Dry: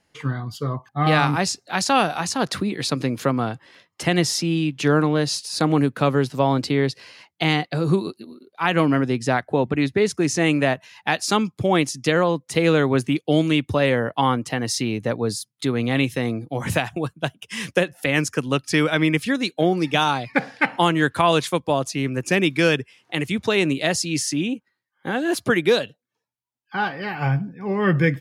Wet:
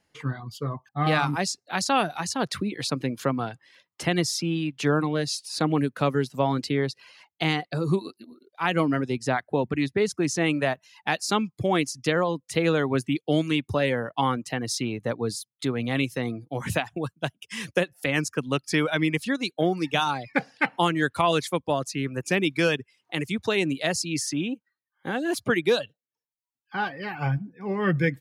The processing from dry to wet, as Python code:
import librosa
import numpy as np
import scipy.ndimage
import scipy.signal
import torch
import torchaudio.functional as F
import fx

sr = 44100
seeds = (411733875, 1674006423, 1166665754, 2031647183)

y = fx.dereverb_blind(x, sr, rt60_s=0.55)
y = y * 10.0 ** (-4.0 / 20.0)